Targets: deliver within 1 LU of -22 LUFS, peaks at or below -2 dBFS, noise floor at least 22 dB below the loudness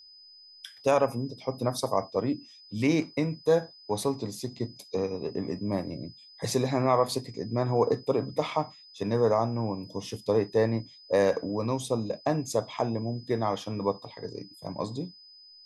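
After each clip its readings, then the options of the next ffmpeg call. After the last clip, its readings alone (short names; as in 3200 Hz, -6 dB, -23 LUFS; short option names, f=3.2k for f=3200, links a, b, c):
steady tone 5000 Hz; tone level -50 dBFS; loudness -29.0 LUFS; peak -10.5 dBFS; loudness target -22.0 LUFS
-> -af "bandreject=f=5k:w=30"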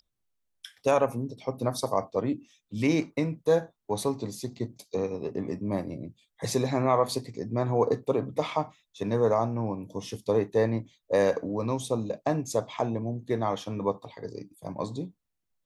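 steady tone none; loudness -29.0 LUFS; peak -11.0 dBFS; loudness target -22.0 LUFS
-> -af "volume=7dB"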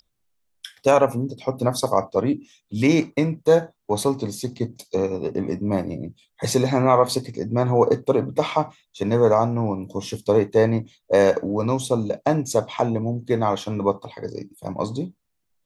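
loudness -22.0 LUFS; peak -4.0 dBFS; noise floor -74 dBFS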